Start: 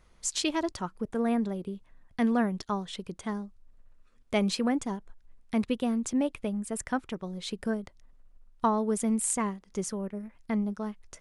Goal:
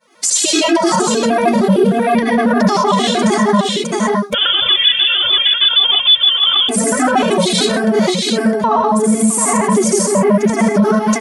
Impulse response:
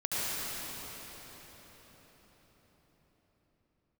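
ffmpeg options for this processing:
-filter_complex "[0:a]highpass=f=230:w=0.5412,highpass=f=230:w=1.3066,agate=range=0.0224:threshold=0.00141:ratio=3:detection=peak,acontrast=66,aecho=1:1:72|88|659:0.133|0.237|0.224[s0];[1:a]atrim=start_sample=2205,afade=t=out:st=0.27:d=0.01,atrim=end_sample=12348[s1];[s0][s1]afir=irnorm=-1:irlink=0,asettb=1/sr,asplit=3[s2][s3][s4];[s2]atrim=end=4.344[s5];[s3]atrim=start=4.34:end=6.69,asetpts=PTS-STARTPTS,afade=t=in:d=0.004:c=qsin,afade=t=out:st=2.346:d=0.004:c=qsin,lowpass=f=3100:t=q:w=0.5098,lowpass=f=3100:t=q:w=0.6013,lowpass=f=3100:t=q:w=0.9,lowpass=f=3100:t=q:w=2.563,afreqshift=-3700[s6];[s4]atrim=start=6.686[s7];[s5][s6]acrossfade=d=0.004:c1=hsin:c2=qsin[s8];[s8][s7]acrossfade=d=0.004:c1=qsin:c2=hsin,alimiter=level_in=29.9:limit=0.891:release=50:level=0:latency=1,afftfilt=real='re*gt(sin(2*PI*6.5*pts/sr)*(1-2*mod(floor(b*sr/1024/220),2)),0)':imag='im*gt(sin(2*PI*6.5*pts/sr)*(1-2*mod(floor(b*sr/1024/220),2)),0)':win_size=1024:overlap=0.75,volume=0.891"

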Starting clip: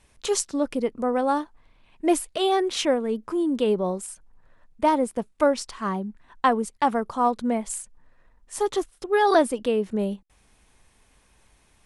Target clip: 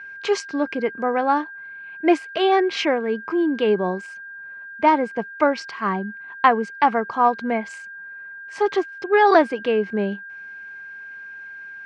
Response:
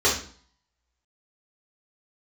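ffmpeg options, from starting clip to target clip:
-af "aeval=exprs='val(0)+0.00891*sin(2*PI*1600*n/s)':c=same,highpass=180,equalizer=f=250:t=q:w=4:g=-6,equalizer=f=550:t=q:w=4:g=-6,equalizer=f=2200:t=q:w=4:g=6,equalizer=f=3600:t=q:w=4:g=-8,lowpass=f=4600:w=0.5412,lowpass=f=4600:w=1.3066,volume=1.88"

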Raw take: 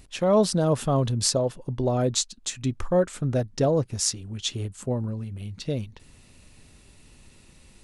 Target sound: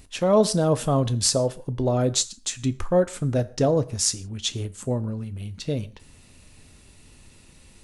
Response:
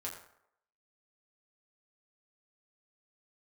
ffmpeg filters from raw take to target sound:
-filter_complex "[0:a]asplit=2[s0][s1];[1:a]atrim=start_sample=2205,afade=t=out:st=0.22:d=0.01,atrim=end_sample=10143,highshelf=f=4500:g=10[s2];[s1][s2]afir=irnorm=-1:irlink=0,volume=0.282[s3];[s0][s3]amix=inputs=2:normalize=0"

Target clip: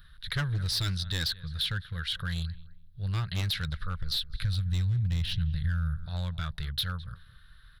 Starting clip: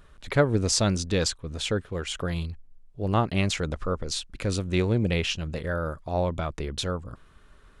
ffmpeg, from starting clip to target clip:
-filter_complex "[0:a]firequalizer=gain_entry='entry(150,0);entry(270,-29);entry(470,-21);entry(760,-19);entry(1600,5);entry(2400,-8);entry(3800,10);entry(6900,-21);entry(11000,6)':delay=0.05:min_phase=1,asplit=2[s0][s1];[s1]adelay=210,lowpass=f=2000:p=1,volume=0.1,asplit=2[s2][s3];[s3]adelay=210,lowpass=f=2000:p=1,volume=0.28[s4];[s0][s2][s4]amix=inputs=3:normalize=0,asoftclip=type=hard:threshold=0.0708,asettb=1/sr,asplit=3[s5][s6][s7];[s5]atrim=end=3.874[s8];[s6]atrim=start=3.87:end=6.06,asetpts=PTS-STARTPTS,afade=t=in:d=0.004:c=qsin,afade=t=out:st=2.186:d=0.004:c=qsin,asubboost=boost=10:cutoff=200[s9];[s7]atrim=start=6.056[s10];[s8][s9]acrossfade=d=0.004:c1=hsin:c2=qsin[s11];[s11][s10]acrossfade=d=0.004:c1=qsin:c2=hsin,acompressor=threshold=0.0501:ratio=6"

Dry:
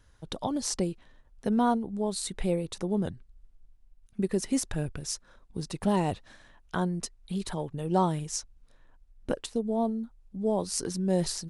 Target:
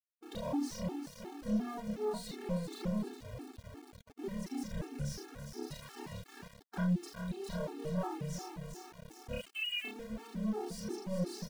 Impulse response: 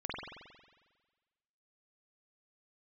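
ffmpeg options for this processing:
-filter_complex "[0:a]agate=range=0.141:threshold=0.00251:ratio=16:detection=peak,acompressor=threshold=0.0126:ratio=5,asettb=1/sr,asplit=3[s0][s1][s2];[s0]atrim=end=5.714[s3];[s1]atrim=start=5.71:end=6.12,asetpts=PTS-STARTPTS,afade=t=in:d=0.004:c=qsin,afade=t=out:st=0.406:d=0.004:c=qsin,highpass=f=1100:w=0.5412,highpass=f=1100:w=1.3066[s4];[s2]atrim=start=6.116[s5];[s3][s4]acrossfade=d=0.004:c1=hsin:c2=qsin[s6];[s6][s5]acrossfade=d=0.004:c1=qsin:c2=hsin,aecho=1:1:405|810|1215|1620|2025|2430:0.316|0.164|0.0855|0.0445|0.0231|0.012,asoftclip=type=tanh:threshold=0.0158,highshelf=f=2100:g=-8,asettb=1/sr,asplit=3[s7][s8][s9];[s7]atrim=end=9.334[s10];[s8]atrim=start=9.33:end=9.85,asetpts=PTS-STARTPTS,afade=t=in:d=0.004:c=qsin,afade=t=out:st=0.516:d=0.004:c=qsin,lowpass=f=2600:t=q:w=0.5098,lowpass=f=2600:t=q:w=0.6013,lowpass=f=2600:t=q:w=0.9,lowpass=f=2600:t=q:w=2.563,afreqshift=-3100[s11];[s9]atrim=start=9.846[s12];[s10][s11]acrossfade=d=0.004:c1=hsin:c2=qsin[s13];[s13][s12]acrossfade=d=0.004:c1=qsin:c2=hsin[s14];[1:a]atrim=start_sample=2205,atrim=end_sample=6174,asetrate=70560,aresample=44100[s15];[s14][s15]afir=irnorm=-1:irlink=0,asettb=1/sr,asplit=3[s16][s17][s18];[s16]atrim=end=3.094[s19];[s17]atrim=start=3.09:end=4.24,asetpts=PTS-STARTPTS,afade=t=in:d=0.004:c=qsin,afade=t=out:st=1.146:d=0.004:c=qsin,aeval=exprs='val(0)*sin(2*PI*81*n/s)':c=same[s20];[s18]atrim=start=4.236[s21];[s19][s20]acrossfade=d=0.004:c1=hsin:c2=qsin[s22];[s22][s21]acrossfade=d=0.004:c1=qsin:c2=hsin,aeval=exprs='val(0)*gte(abs(val(0)),0.00168)':c=same,afftfilt=real='re*gt(sin(2*PI*2.8*pts/sr)*(1-2*mod(floor(b*sr/1024/230),2)),0)':imag='im*gt(sin(2*PI*2.8*pts/sr)*(1-2*mod(floor(b*sr/1024/230),2)),0)':win_size=1024:overlap=0.75,volume=3.55"

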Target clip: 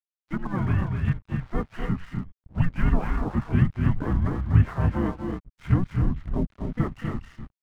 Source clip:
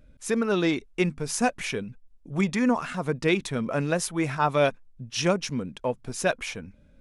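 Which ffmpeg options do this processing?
-filter_complex "[0:a]highpass=f=310:t=q:w=0.5412,highpass=f=310:t=q:w=1.307,lowpass=f=2000:t=q:w=0.5176,lowpass=f=2000:t=q:w=0.7071,lowpass=f=2000:t=q:w=1.932,afreqshift=-210,asetrate=40517,aresample=44100,alimiter=limit=0.0891:level=0:latency=1:release=325,asplit=4[s0][s1][s2][s3];[s1]asetrate=29433,aresample=44100,atempo=1.49831,volume=0.447[s4];[s2]asetrate=37084,aresample=44100,atempo=1.18921,volume=0.316[s5];[s3]asetrate=66075,aresample=44100,atempo=0.66742,volume=0.501[s6];[s0][s4][s5][s6]amix=inputs=4:normalize=0,aecho=1:1:244.9|277:0.447|0.447,aeval=exprs='sgn(val(0))*max(abs(val(0))-0.00316,0)':c=same,asubboost=boost=6.5:cutoff=170"

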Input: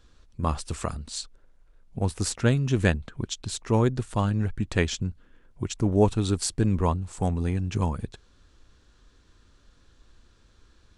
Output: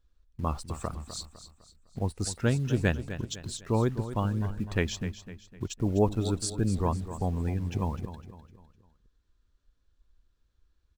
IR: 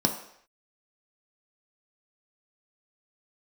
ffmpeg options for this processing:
-filter_complex "[0:a]afftdn=nr=13:nf=-41,asplit=2[s0][s1];[s1]acrusher=bits=6:mix=0:aa=0.000001,volume=0.398[s2];[s0][s2]amix=inputs=2:normalize=0,aecho=1:1:253|506|759|1012:0.251|0.103|0.0422|0.0173,volume=0.447"

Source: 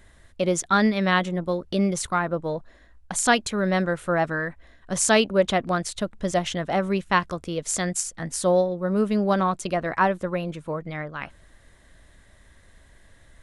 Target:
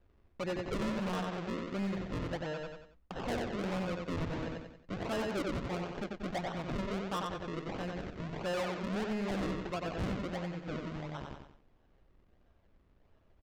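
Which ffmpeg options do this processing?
-filter_complex "[0:a]agate=range=0.282:threshold=0.00562:ratio=16:detection=peak,aresample=16000,acrusher=samples=14:mix=1:aa=0.000001:lfo=1:lforange=14:lforate=1.5,aresample=44100,lowpass=3300,asplit=2[s0][s1];[s1]aecho=0:1:92|184|276|368:0.531|0.186|0.065|0.0228[s2];[s0][s2]amix=inputs=2:normalize=0,asoftclip=type=hard:threshold=0.1,alimiter=level_in=1.68:limit=0.0631:level=0:latency=1:release=215,volume=0.596,volume=0.708"

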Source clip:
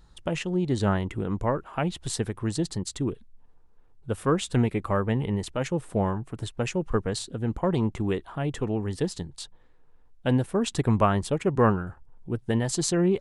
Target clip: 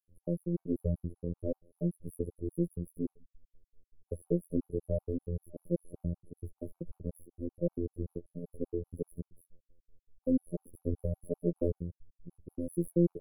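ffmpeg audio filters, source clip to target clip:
-af "aeval=exprs='if(lt(val(0),0),0.708*val(0),val(0))':c=same,afftfilt=real='re*(1-between(b*sr/4096,600,10000))':imag='im*(1-between(b*sr/4096,600,10000))':win_size=4096:overlap=0.75,afftfilt=real='hypot(re,im)*cos(PI*b)':imag='0':win_size=2048:overlap=0.75,afftfilt=real='re*gt(sin(2*PI*5.2*pts/sr)*(1-2*mod(floor(b*sr/1024/750),2)),0)':imag='im*gt(sin(2*PI*5.2*pts/sr)*(1-2*mod(floor(b*sr/1024/750),2)),0)':win_size=1024:overlap=0.75"

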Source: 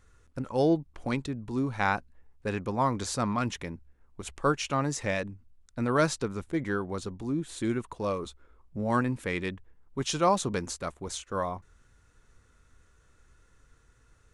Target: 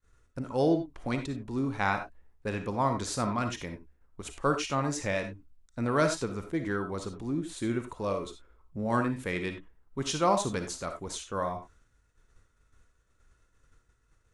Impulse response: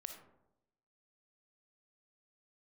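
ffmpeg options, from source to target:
-filter_complex "[0:a]agate=range=0.0224:threshold=0.002:ratio=3:detection=peak[s0];[1:a]atrim=start_sample=2205,afade=t=out:st=0.15:d=0.01,atrim=end_sample=7056[s1];[s0][s1]afir=irnorm=-1:irlink=0,volume=1.5"

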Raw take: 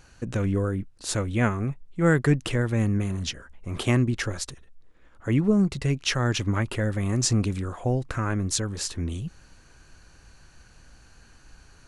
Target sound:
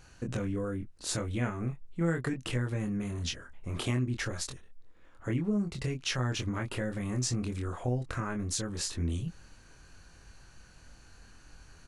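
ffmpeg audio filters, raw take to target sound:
-filter_complex "[0:a]acompressor=threshold=0.0398:ratio=3,asplit=2[s0][s1];[s1]adelay=24,volume=0.631[s2];[s0][s2]amix=inputs=2:normalize=0,volume=0.668"

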